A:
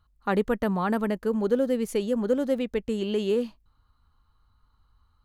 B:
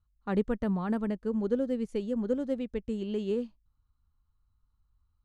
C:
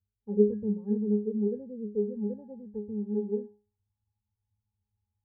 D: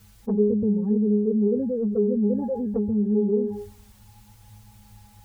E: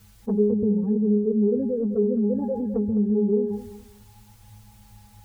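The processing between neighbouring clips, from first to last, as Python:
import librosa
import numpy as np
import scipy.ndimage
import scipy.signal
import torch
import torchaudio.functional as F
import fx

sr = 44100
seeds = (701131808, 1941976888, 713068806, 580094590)

y1 = scipy.signal.sosfilt(scipy.signal.butter(4, 9200.0, 'lowpass', fs=sr, output='sos'), x)
y1 = fx.low_shelf(y1, sr, hz=280.0, db=12.0)
y1 = fx.upward_expand(y1, sr, threshold_db=-35.0, expansion=1.5)
y1 = y1 * 10.0 ** (-8.0 / 20.0)
y2 = fx.high_shelf(y1, sr, hz=3100.0, db=-9.0)
y2 = fx.filter_sweep_lowpass(y2, sr, from_hz=460.0, to_hz=950.0, start_s=1.74, end_s=3.04, q=2.4)
y2 = fx.octave_resonator(y2, sr, note='G#', decay_s=0.34)
y2 = y2 * 10.0 ** (7.0 / 20.0)
y3 = fx.rider(y2, sr, range_db=4, speed_s=2.0)
y3 = fx.env_flanger(y3, sr, rest_ms=6.0, full_db=-25.5)
y3 = fx.env_flatten(y3, sr, amount_pct=70)
y4 = fx.echo_feedback(y3, sr, ms=208, feedback_pct=23, wet_db=-13.0)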